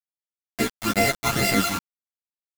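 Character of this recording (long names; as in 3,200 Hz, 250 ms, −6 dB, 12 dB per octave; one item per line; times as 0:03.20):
a buzz of ramps at a fixed pitch in blocks of 64 samples
phaser sweep stages 12, 2.2 Hz, lowest notch 520–1,200 Hz
a quantiser's noise floor 6 bits, dither none
a shimmering, thickened sound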